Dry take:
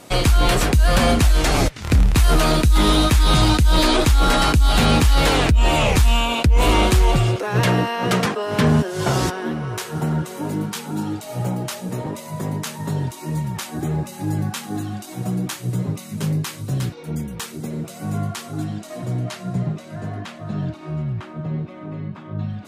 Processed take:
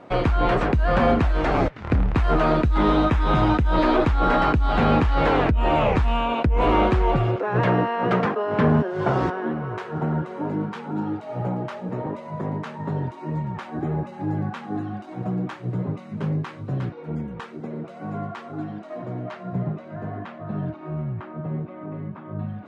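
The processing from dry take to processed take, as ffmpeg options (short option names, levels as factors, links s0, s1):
-filter_complex "[0:a]asettb=1/sr,asplit=3[s0][s1][s2];[s0]atrim=end=3.054[s3];[s1]atrim=start=3.05:end=3.75,asetpts=PTS-STARTPTS,afade=t=in:d=0.004:c=qsin,afade=t=out:st=0.696:d=0.004:c=qsin,bandreject=f=4400:w=8.5[s4];[s2]atrim=start=3.746[s5];[s3][s4]acrossfade=d=0.004:c1=hsin:c2=qsin[s6];[s6][s5]acrossfade=d=0.004:c1=qsin:c2=hsin,asettb=1/sr,asplit=3[s7][s8][s9];[s7]atrim=end=17.414[s10];[s8]atrim=start=17.41:end=19.53,asetpts=PTS-STARTPTS,afade=t=in:d=0.004:c=qsin,afade=t=out:st=2.116:d=0.004:c=qsin,highpass=f=190:p=1[s11];[s9]atrim=start=19.526[s12];[s10][s11]acrossfade=d=0.004:c1=hsin:c2=qsin[s13];[s13][s12]acrossfade=d=0.004:c1=qsin:c2=hsin,lowpass=1500,lowshelf=f=160:g=-8.5,volume=1.12"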